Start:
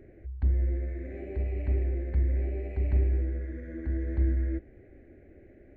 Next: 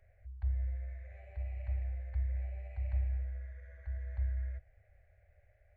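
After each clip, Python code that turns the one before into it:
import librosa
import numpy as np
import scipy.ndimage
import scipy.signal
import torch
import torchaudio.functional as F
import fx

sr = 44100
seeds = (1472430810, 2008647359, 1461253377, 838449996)

y = scipy.signal.sosfilt(scipy.signal.cheby1(3, 1.0, [100.0, 630.0], 'bandstop', fs=sr, output='sos'), x)
y = y * librosa.db_to_amplitude(-7.5)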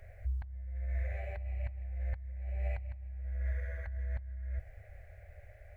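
y = fx.over_compress(x, sr, threshold_db=-44.0, ratio=-1.0)
y = y * librosa.db_to_amplitude(6.5)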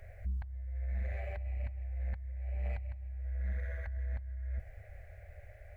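y = 10.0 ** (-31.0 / 20.0) * np.tanh(x / 10.0 ** (-31.0 / 20.0))
y = y * librosa.db_to_amplitude(1.5)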